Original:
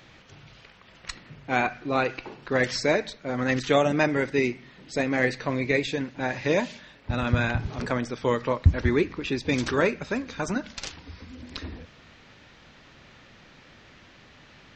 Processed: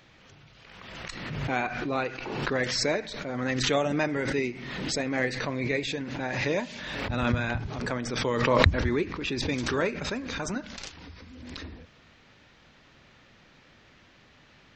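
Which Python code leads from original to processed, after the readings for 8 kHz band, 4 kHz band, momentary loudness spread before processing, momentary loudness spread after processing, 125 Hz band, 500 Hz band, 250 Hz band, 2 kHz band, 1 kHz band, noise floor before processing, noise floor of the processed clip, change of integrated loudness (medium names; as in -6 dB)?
+3.0 dB, +2.5 dB, 17 LU, 15 LU, -3.0 dB, -3.0 dB, -2.5 dB, -2.0 dB, -2.0 dB, -53 dBFS, -58 dBFS, -2.5 dB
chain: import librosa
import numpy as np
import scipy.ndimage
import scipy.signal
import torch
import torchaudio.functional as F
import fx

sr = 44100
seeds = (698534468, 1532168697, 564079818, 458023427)

y = fx.pre_swell(x, sr, db_per_s=33.0)
y = F.gain(torch.from_numpy(y), -5.0).numpy()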